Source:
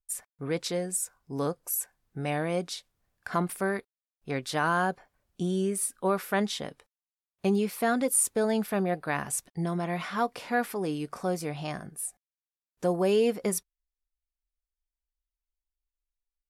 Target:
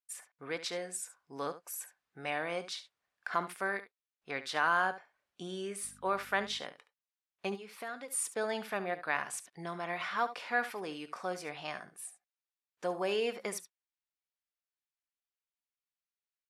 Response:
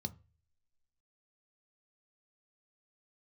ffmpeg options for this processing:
-filter_complex "[0:a]asettb=1/sr,asplit=3[link_01][link_02][link_03];[link_01]atrim=end=5.834[link_04];[link_02]atrim=start=5.83:end=6.59,asetpts=PTS-STARTPTS,afade=type=in:duration=0.004:curve=qsin,afade=type=out:start_time=0.756:duration=0.004:curve=qsin,aeval=exprs='val(0)+0.0126*(sin(2*PI*50*n/s)+sin(2*PI*2*50*n/s)/2+sin(2*PI*3*50*n/s)/3+sin(2*PI*4*50*n/s)/4+sin(2*PI*5*50*n/s)/5)':channel_layout=same[link_05];[link_03]atrim=start=6.586[link_06];[link_04][link_05]acrossfade=duration=0.004:curve1=hsin:curve2=qsin[link_07];[link_07][link_06]acrossfade=duration=0.004:curve1=qsin:curve2=hsin,asplit=3[link_08][link_09][link_10];[link_08]afade=type=out:start_time=7.54:duration=0.02[link_11];[link_09]acompressor=threshold=-34dB:ratio=6,afade=type=in:start_time=7.54:duration=0.02,afade=type=out:start_time=8.1:duration=0.02[link_12];[link_10]afade=type=in:start_time=8.1:duration=0.02[link_13];[link_11][link_12][link_13]amix=inputs=3:normalize=0,bandpass=frequency=2000:width_type=q:width=0.6:csg=0,aecho=1:1:71:0.211"

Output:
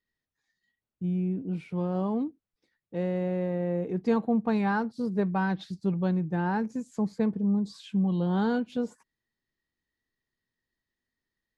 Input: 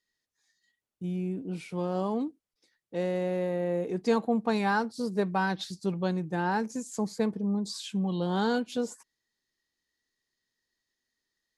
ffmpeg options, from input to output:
ffmpeg -i in.wav -af "bass=frequency=250:gain=8,treble=frequency=4000:gain=-13,volume=-2dB" out.wav

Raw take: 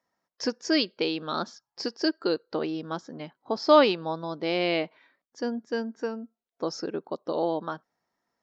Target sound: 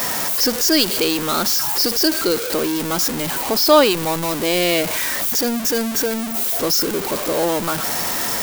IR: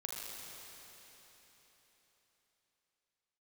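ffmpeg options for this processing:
-af "aeval=exprs='val(0)+0.5*0.0562*sgn(val(0))':channel_layout=same,aemphasis=mode=production:type=50kf,volume=4dB"

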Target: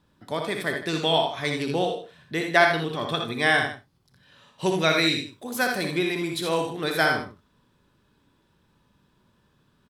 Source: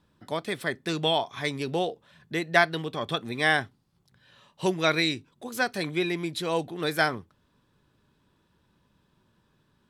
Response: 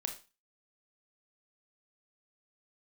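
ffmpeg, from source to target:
-filter_complex "[0:a]asettb=1/sr,asplit=3[link_01][link_02][link_03];[link_01]atrim=end=4.754[link_04];[link_02]atrim=start=4.75:end=6.68,asetpts=PTS-STARTPTS,afade=type=in:duration=0.004:curve=qsin,afade=type=out:start_time=1.926:duration=0.004:curve=qsin,highshelf=frequency=12000:gain=9[link_05];[link_03]atrim=start=6.676[link_06];[link_04][link_05]acrossfade=duration=0.004:curve1=hsin:curve2=qsin[link_07];[link_07][link_06]acrossfade=duration=0.004:curve1=qsin:curve2=hsin,aecho=1:1:61|82|156:0.473|0.447|0.188,asplit=2[link_08][link_09];[1:a]atrim=start_sample=2205,atrim=end_sample=4410[link_10];[link_09][link_10]afir=irnorm=-1:irlink=0,volume=-2dB[link_11];[link_08][link_11]amix=inputs=2:normalize=0,volume=-3.5dB"

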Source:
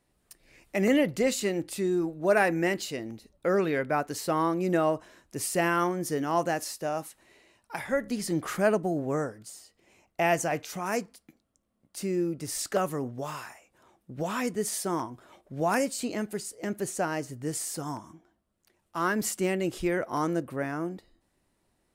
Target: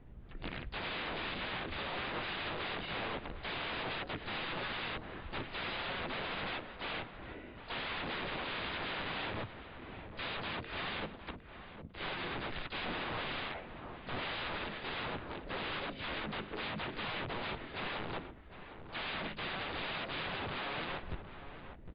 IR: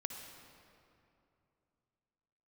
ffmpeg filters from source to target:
-filter_complex "[0:a]aemphasis=mode=reproduction:type=riaa,afftfilt=real='re*lt(hypot(re,im),0.398)':imag='im*lt(hypot(re,im),0.398)':win_size=1024:overlap=0.75,lowshelf=frequency=62:gain=-3,acompressor=threshold=-38dB:ratio=5,aresample=8000,aeval=exprs='(mod(158*val(0)+1,2)-1)/158':channel_layout=same,aresample=44100,asplit=3[link_01][link_02][link_03];[link_02]asetrate=33038,aresample=44100,atempo=1.33484,volume=-3dB[link_04];[link_03]asetrate=55563,aresample=44100,atempo=0.793701,volume=-10dB[link_05];[link_01][link_04][link_05]amix=inputs=3:normalize=0,asplit=2[link_06][link_07];[link_07]adelay=758,volume=-10dB,highshelf=frequency=4000:gain=-17.1[link_08];[link_06][link_08]amix=inputs=2:normalize=0,volume=8dB" -ar 11025 -c:a libmp3lame -b:a 40k

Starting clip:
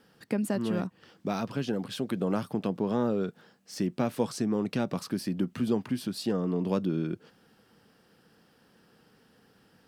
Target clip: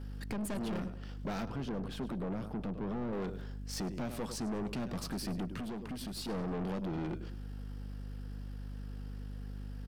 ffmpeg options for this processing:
ffmpeg -i in.wav -filter_complex "[0:a]asplit=2[link_01][link_02];[link_02]aecho=0:1:102|204|306:0.158|0.046|0.0133[link_03];[link_01][link_03]amix=inputs=2:normalize=0,aeval=exprs='val(0)+0.00708*(sin(2*PI*50*n/s)+sin(2*PI*2*50*n/s)/2+sin(2*PI*3*50*n/s)/3+sin(2*PI*4*50*n/s)/4+sin(2*PI*5*50*n/s)/5)':channel_layout=same,alimiter=limit=-21.5dB:level=0:latency=1:release=473,aeval=exprs='(tanh(70.8*val(0)+0.3)-tanh(0.3))/70.8':channel_layout=same,asettb=1/sr,asplit=3[link_04][link_05][link_06];[link_04]atrim=end=1.454[link_07];[link_05]atrim=start=1.45:end=3.13,asetpts=PTS-STARTPTS,afade=type=in:duration=0.004:curve=qsin,afade=type=out:start_time=1.676:duration=0.004:curve=qsin,highshelf=frequency=2300:gain=-11.5[link_08];[link_06]atrim=start=3.126[link_09];[link_07][link_08]acrossfade=duration=0.004:curve1=hsin:curve2=qsin[link_10];[link_10][link_09]acrossfade=duration=0.004:curve1=qsin:curve2=hsin,asettb=1/sr,asplit=3[link_11][link_12][link_13];[link_11]atrim=end=5.574[link_14];[link_12]atrim=start=5.57:end=6.29,asetpts=PTS-STARTPTS,afade=type=in:duration=0.004:curve=qsin,afade=type=out:start_time=0.716:duration=0.004:curve=qsin,acompressor=threshold=-41dB:ratio=6[link_15];[link_13]atrim=start=6.286[link_16];[link_14][link_15]acrossfade=duration=0.004:curve1=hsin:curve2=qsin[link_17];[link_17][link_16]acrossfade=duration=0.004:curve1=qsin:curve2=hsin,volume=3.5dB" out.wav

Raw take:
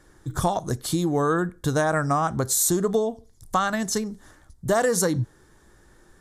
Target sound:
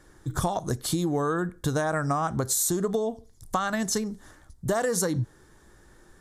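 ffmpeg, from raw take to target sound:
ffmpeg -i in.wav -af "acompressor=threshold=-22dB:ratio=6" out.wav

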